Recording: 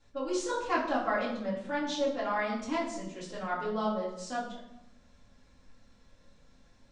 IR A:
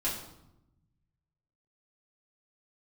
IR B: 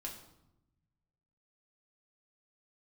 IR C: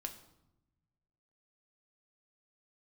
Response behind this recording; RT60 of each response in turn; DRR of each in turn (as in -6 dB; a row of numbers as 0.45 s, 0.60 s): A; 0.90 s, 0.90 s, 0.90 s; -8.0 dB, -1.5 dB, 4.5 dB